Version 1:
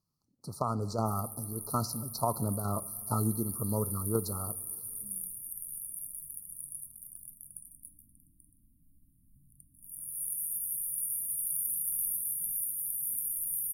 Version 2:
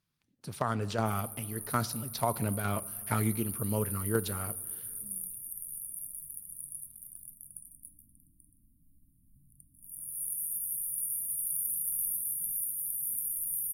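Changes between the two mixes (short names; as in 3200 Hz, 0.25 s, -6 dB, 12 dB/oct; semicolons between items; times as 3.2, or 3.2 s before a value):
speech: remove Chebyshev band-stop 1300–4200 Hz, order 5; master: add bell 2100 Hz -8.5 dB 0.49 oct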